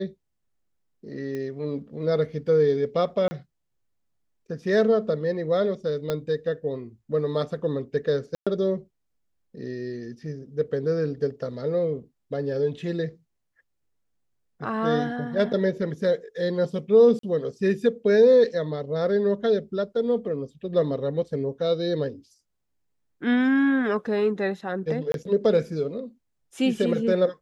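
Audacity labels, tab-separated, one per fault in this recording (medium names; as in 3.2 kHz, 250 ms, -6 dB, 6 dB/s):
1.350000	1.350000	pop -22 dBFS
3.280000	3.310000	dropout 30 ms
6.100000	6.100000	pop -13 dBFS
8.350000	8.470000	dropout 116 ms
17.190000	17.230000	dropout 43 ms
25.120000	25.140000	dropout 22 ms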